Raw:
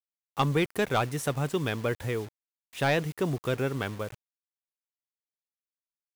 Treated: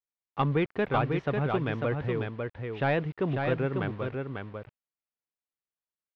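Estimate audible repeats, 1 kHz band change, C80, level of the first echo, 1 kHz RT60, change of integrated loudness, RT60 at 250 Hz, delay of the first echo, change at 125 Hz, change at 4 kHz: 1, 0.0 dB, no reverb audible, −4.5 dB, no reverb audible, −0.5 dB, no reverb audible, 546 ms, +1.0 dB, −7.0 dB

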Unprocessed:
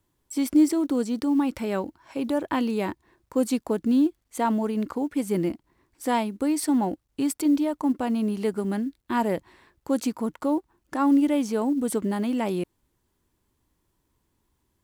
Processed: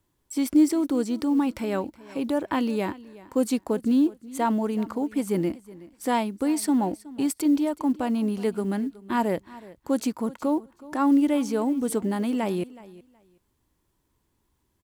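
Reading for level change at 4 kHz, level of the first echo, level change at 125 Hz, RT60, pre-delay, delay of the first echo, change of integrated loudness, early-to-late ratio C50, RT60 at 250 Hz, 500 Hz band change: 0.0 dB, −19.5 dB, 0.0 dB, no reverb audible, no reverb audible, 371 ms, 0.0 dB, no reverb audible, no reverb audible, 0.0 dB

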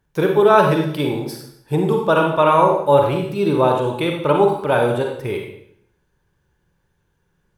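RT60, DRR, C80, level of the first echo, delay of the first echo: 0.70 s, 1.5 dB, 7.0 dB, no echo audible, no echo audible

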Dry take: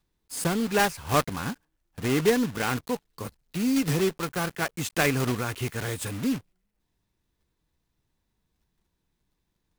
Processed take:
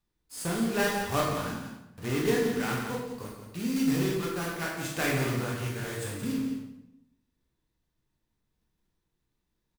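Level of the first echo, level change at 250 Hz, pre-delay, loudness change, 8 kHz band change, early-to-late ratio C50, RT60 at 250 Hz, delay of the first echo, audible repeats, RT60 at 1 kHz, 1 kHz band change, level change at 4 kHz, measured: −8.5 dB, −2.5 dB, 16 ms, −3.0 dB, −4.0 dB, 1.5 dB, 1.0 s, 176 ms, 1, 0.80 s, −4.0 dB, −3.5 dB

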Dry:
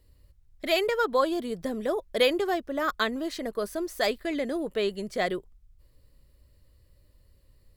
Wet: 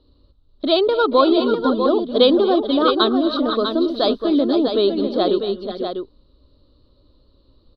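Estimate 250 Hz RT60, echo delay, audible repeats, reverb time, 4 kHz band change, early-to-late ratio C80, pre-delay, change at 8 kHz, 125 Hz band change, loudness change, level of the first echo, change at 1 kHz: no reverb audible, 229 ms, 4, no reverb audible, +10.5 dB, no reverb audible, no reverb audible, below −20 dB, can't be measured, +10.5 dB, −18.5 dB, +9.5 dB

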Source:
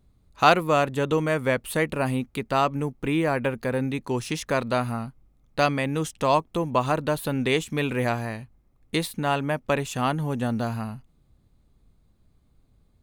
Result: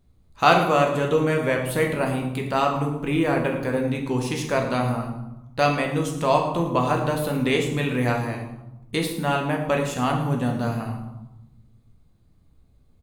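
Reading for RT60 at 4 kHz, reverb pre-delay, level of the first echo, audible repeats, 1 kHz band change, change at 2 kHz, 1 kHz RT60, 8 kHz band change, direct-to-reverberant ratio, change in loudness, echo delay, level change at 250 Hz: 0.60 s, 11 ms, −13.5 dB, 1, +2.0 dB, +1.5 dB, 0.95 s, +1.0 dB, 1.0 dB, +2.0 dB, 111 ms, +2.5 dB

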